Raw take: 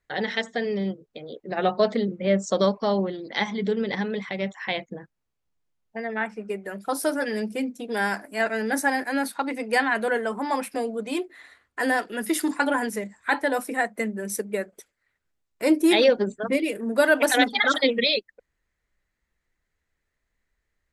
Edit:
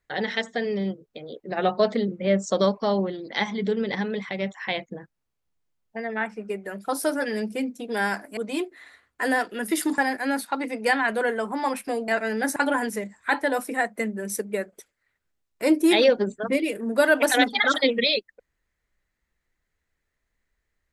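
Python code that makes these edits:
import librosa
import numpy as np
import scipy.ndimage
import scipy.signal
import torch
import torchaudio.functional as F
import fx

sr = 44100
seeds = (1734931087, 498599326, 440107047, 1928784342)

y = fx.edit(x, sr, fx.swap(start_s=8.37, length_s=0.48, other_s=10.95, other_length_s=1.61), tone=tone)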